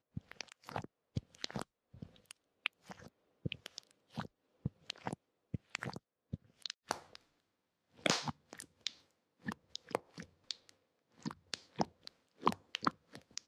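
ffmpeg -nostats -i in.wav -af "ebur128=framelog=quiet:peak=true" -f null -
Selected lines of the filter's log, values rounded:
Integrated loudness:
  I:         -43.1 LUFS
  Threshold: -53.9 LUFS
Loudness range:
  LRA:         5.2 LU
  Threshold: -64.6 LUFS
  LRA low:   -47.3 LUFS
  LRA high:  -42.1 LUFS
True peak:
  Peak:      -13.3 dBFS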